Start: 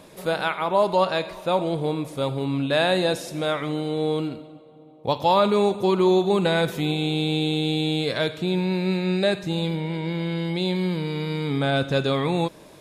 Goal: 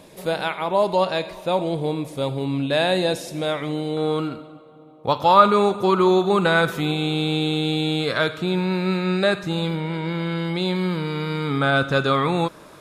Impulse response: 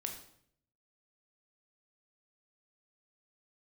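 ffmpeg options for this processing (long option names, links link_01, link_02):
-af "asetnsamples=nb_out_samples=441:pad=0,asendcmd='3.97 equalizer g 12.5',equalizer=frequency=1300:width=2.6:gain=-4,volume=1dB"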